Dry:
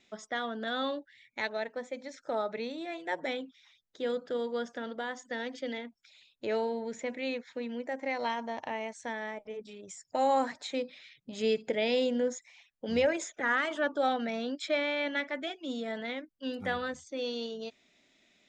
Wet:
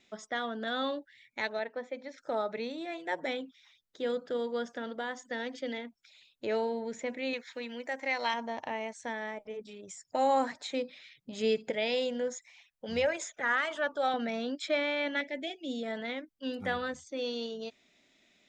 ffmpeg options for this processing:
-filter_complex "[0:a]asettb=1/sr,asplit=3[a][b][c];[a]atrim=end=1.594[d];[b]atrim=start=1.59:end=2.18,asetpts=PTS-STARTPTS,afade=t=in:d=0.004:c=qsin,afade=t=out:st=0.586:d=0.004:c=qsin,highpass=210,lowpass=3.9k[e];[c]atrim=start=2.176[f];[d][e]acrossfade=d=0.004:c1=hsin:c2=qsin[g];[g][f]acrossfade=d=0.004:c1=qsin:c2=hsin,asettb=1/sr,asplit=3[h][i][j];[h]atrim=end=7.334[k];[i]atrim=start=7.33:end=8.34,asetpts=PTS-STARTPTS,afade=t=in:d=0.004:c=qsin,afade=t=out:st=1.006:d=0.004:c=qsin,tiltshelf=f=790:g=-6.5[l];[j]atrim=start=8.336[m];[k][l]acrossfade=d=0.004:c1=hsin:c2=qsin[n];[n][m]acrossfade=d=0.004:c1=qsin:c2=hsin,asettb=1/sr,asplit=3[o][p][q];[o]atrim=end=11.704[r];[p]atrim=start=11.7:end=14.14,asetpts=PTS-STARTPTS,afade=t=in:d=0.004:c=qsin,afade=t=out:st=2.436:d=0.004:c=qsin,equalizer=f=300:w=1.5:g=-9[s];[q]atrim=start=14.136[t];[r][s]acrossfade=d=0.004:c1=hsin:c2=qsin[u];[u][t]acrossfade=d=0.004:c1=qsin:c2=hsin,asettb=1/sr,asplit=3[v][w][x];[v]atrim=end=15.214[y];[w]atrim=start=15.21:end=15.83,asetpts=PTS-STARTPTS,afade=t=in:d=0.004:c=qsin,afade=t=out:st=0.616:d=0.004:c=qsin,asuperstop=centerf=1200:order=4:qfactor=1[z];[x]atrim=start=15.826[aa];[y][z]acrossfade=d=0.004:c1=hsin:c2=qsin[ab];[ab][aa]acrossfade=d=0.004:c1=qsin:c2=hsin"

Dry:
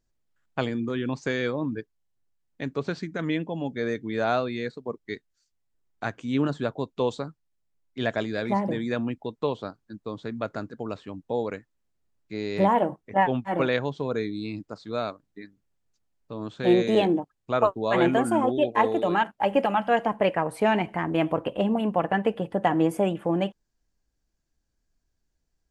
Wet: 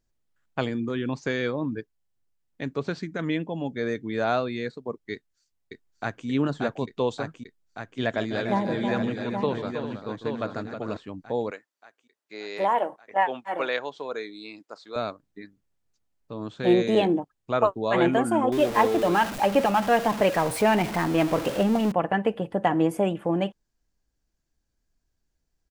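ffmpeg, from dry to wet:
-filter_complex "[0:a]asettb=1/sr,asplit=3[a][b][c];[a]atrim=end=1.204[d];[b]atrim=start=1.2:end=1.65,asetpts=PTS-STARTPTS,afade=t=in:d=0.004:c=qsin,afade=t=out:st=0.446:d=0.004:c=qsin,equalizer=f=8.1k:w=5.1:g=-9[e];[c]atrim=start=1.646[f];[d][e]acrossfade=d=0.004:c1=hsin:c2=qsin[g];[g][f]acrossfade=d=0.004:c1=qsin:c2=hsin,asplit=2[h][i];[i]afade=t=in:st=5.13:d=0.01,afade=t=out:st=6.27:d=0.01,aecho=0:1:580|1160|1740|2320|2900|3480|4060|4640|5220|5800|6380|6960:0.707946|0.566357|0.453085|0.362468|0.289975|0.23198|0.185584|0.148467|0.118774|0.0950189|0.0760151|0.0608121[j];[h][j]amix=inputs=2:normalize=0,asettb=1/sr,asplit=3[k][l][m];[k]atrim=end=7.994[n];[l]atrim=start=7.99:end=10.97,asetpts=PTS-STARTPTS,afade=t=in:d=0.004:c=qsin,afade=t=out:st=2.976:d=0.004:c=qsin,aecho=1:1:148|318|397|825:0.2|0.376|0.282|0.447,atrim=end_sample=131418[o];[m]atrim=start=10.966[p];[n][o]acrossfade=d=0.004:c1=hsin:c2=qsin[q];[q][p]acrossfade=d=0.004:c1=qsin:c2=hsin,asettb=1/sr,asplit=3[r][s][t];[r]atrim=end=11.514[u];[s]atrim=start=11.51:end=14.96,asetpts=PTS-STARTPTS,afade=t=in:d=0.004:c=qsin,afade=t=out:st=3.446:d=0.004:c=qsin,highpass=520[v];[t]atrim=start=14.956[w];[u][v]acrossfade=d=0.004:c1=hsin:c2=qsin[x];[x][w]acrossfade=d=0.004:c1=qsin:c2=hsin,asettb=1/sr,asplit=3[y][z][aa];[y]atrim=end=18.524[ab];[z]atrim=start=18.52:end=21.92,asetpts=PTS-STARTPTS,afade=t=in:d=0.004:c=qsin,afade=t=out:st=3.396:d=0.004:c=qsin,aeval=exprs='val(0)+0.5*0.0398*sgn(val(0))':c=same[ac];[aa]atrim=start=21.916[ad];[ab][ac]acrossfade=d=0.004:c1=hsin:c2=qsin[ae];[ae][ad]acrossfade=d=0.004:c1=qsin:c2=hsin"

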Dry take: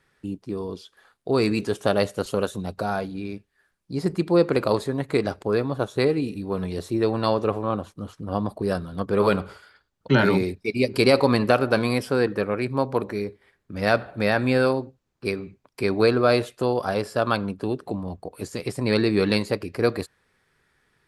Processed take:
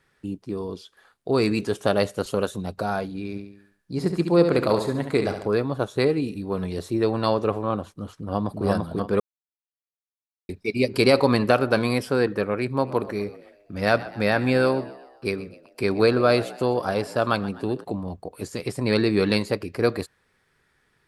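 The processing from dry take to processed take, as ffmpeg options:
-filter_complex "[0:a]asplit=3[a][b][c];[a]afade=t=out:st=3.34:d=0.02[d];[b]aecho=1:1:70|140|210|280|350|420:0.398|0.191|0.0917|0.044|0.0211|0.0101,afade=t=in:st=3.34:d=0.02,afade=t=out:st=5.47:d=0.02[e];[c]afade=t=in:st=5.47:d=0.02[f];[d][e][f]amix=inputs=3:normalize=0,asplit=2[g][h];[h]afade=t=in:st=8.19:d=0.01,afade=t=out:st=8.65:d=0.01,aecho=0:1:340|680|1020|1360:0.891251|0.222813|0.0557032|0.0139258[i];[g][i]amix=inputs=2:normalize=0,asplit=3[j][k][l];[j]afade=t=out:st=12.77:d=0.02[m];[k]asplit=5[n][o][p][q][r];[o]adelay=126,afreqshift=68,volume=-18dB[s];[p]adelay=252,afreqshift=136,volume=-24.4dB[t];[q]adelay=378,afreqshift=204,volume=-30.8dB[u];[r]adelay=504,afreqshift=272,volume=-37.1dB[v];[n][s][t][u][v]amix=inputs=5:normalize=0,afade=t=in:st=12.77:d=0.02,afade=t=out:st=17.83:d=0.02[w];[l]afade=t=in:st=17.83:d=0.02[x];[m][w][x]amix=inputs=3:normalize=0,asplit=3[y][z][aa];[y]atrim=end=9.2,asetpts=PTS-STARTPTS,afade=t=out:st=9.196:d=0.004:c=hsin[ab];[z]atrim=start=9.2:end=10.49,asetpts=PTS-STARTPTS,volume=0[ac];[aa]atrim=start=10.49,asetpts=PTS-STARTPTS,afade=t=in:d=0.004:c=hsin[ad];[ab][ac][ad]concat=n=3:v=0:a=1"

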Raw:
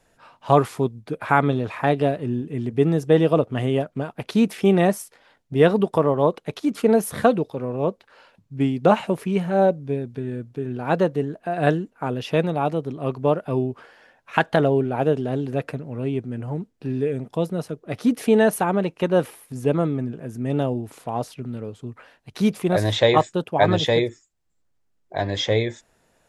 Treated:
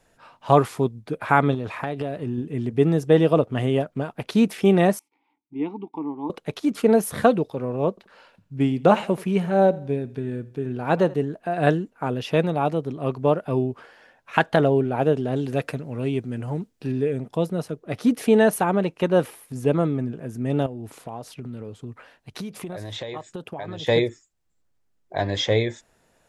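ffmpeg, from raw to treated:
-filter_complex "[0:a]asettb=1/sr,asplit=3[a][b][c];[a]atrim=end=1.544[d];[b]atrim=start=1.54:end=2.38,asetpts=PTS-STARTPTS,afade=t=in:d=0.004:c=qsin,afade=t=out:st=0.836:d=0.004:c=qsin,acompressor=threshold=-23dB:ratio=6:attack=3.2:release=140:knee=1:detection=peak[e];[c]atrim=start=2.376[f];[d][e]acrossfade=d=0.004:c1=hsin:c2=qsin[g];[g][f]acrossfade=d=0.004:c1=qsin:c2=hsin,asettb=1/sr,asplit=3[h][i][j];[h]atrim=end=4.994[k];[i]atrim=start=4.99:end=6.3,asetpts=PTS-STARTPTS,afade=t=in:d=0.004:c=qsin,afade=t=out:st=1.306:d=0.004:c=qsin,asplit=3[l][m][n];[l]bandpass=f=300:t=q:w=8,volume=0dB[o];[m]bandpass=f=870:t=q:w=8,volume=-6dB[p];[n]bandpass=f=2.24k:t=q:w=8,volume=-9dB[q];[o][p][q]amix=inputs=3:normalize=0[r];[j]atrim=start=6.296[s];[k][r]acrossfade=d=0.004:c1=hsin:c2=qsin[t];[t][s]acrossfade=d=0.004:c1=qsin:c2=hsin,asettb=1/sr,asplit=3[u][v][w];[u]atrim=end=7.894[x];[v]atrim=start=7.89:end=11.14,asetpts=PTS-STARTPTS,afade=t=in:d=0.004:c=qsin,afade=t=out:st=3.246:d=0.004:c=qsin,aecho=1:1:83|166|249:0.0944|0.0368|0.0144,atrim=end_sample=143325[y];[w]atrim=start=11.136[z];[x][y]acrossfade=d=0.004:c1=hsin:c2=qsin[aa];[aa][z]acrossfade=d=0.004:c1=qsin:c2=hsin,asettb=1/sr,asplit=3[ab][ac][ad];[ab]atrim=end=15.364[ae];[ac]atrim=start=15.36:end=16.92,asetpts=PTS-STARTPTS,afade=t=in:d=0.004:c=qsin,afade=t=out:st=1.556:d=0.004:c=qsin,highshelf=f=2.4k:g=7.5[af];[ad]atrim=start=16.916[ag];[ae][af]acrossfade=d=0.004:c1=hsin:c2=qsin[ah];[ah][ag]acrossfade=d=0.004:c1=qsin:c2=hsin,asettb=1/sr,asplit=3[ai][aj][ak];[ai]atrim=end=20.664[al];[aj]atrim=start=20.66:end=23.87,asetpts=PTS-STARTPTS,afade=t=in:d=0.004:c=qsin,afade=t=out:st=3.206:d=0.004:c=qsin,acompressor=threshold=-29dB:ratio=12:attack=3.2:release=140:knee=1:detection=peak[am];[ak]atrim=start=23.866[an];[al][am]acrossfade=d=0.004:c1=hsin:c2=qsin[ao];[ao][an]acrossfade=d=0.004:c1=qsin:c2=hsin"

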